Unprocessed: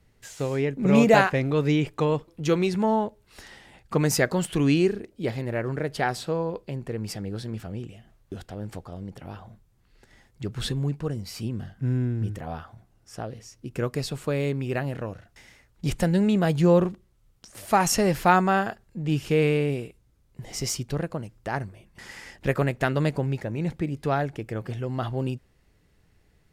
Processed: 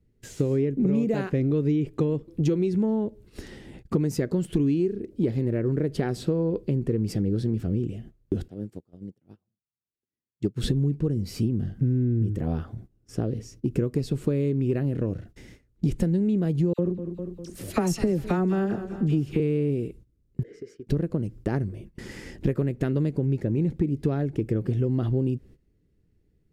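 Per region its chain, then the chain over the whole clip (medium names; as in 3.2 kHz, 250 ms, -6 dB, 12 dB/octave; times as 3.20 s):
8.48–10.64 s: high-pass 120 Hz + treble shelf 4.3 kHz +6 dB + upward expansion 2.5:1, over -49 dBFS
16.73–19.40 s: phase dispersion lows, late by 57 ms, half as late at 1.6 kHz + modulated delay 201 ms, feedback 48%, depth 73 cents, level -18.5 dB
20.43–20.87 s: two resonant band-passes 850 Hz, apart 1.9 oct + compression 10:1, threshold -45 dBFS
whole clip: gate -53 dBFS, range -15 dB; resonant low shelf 540 Hz +12.5 dB, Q 1.5; compression 12:1, threshold -19 dBFS; trim -1.5 dB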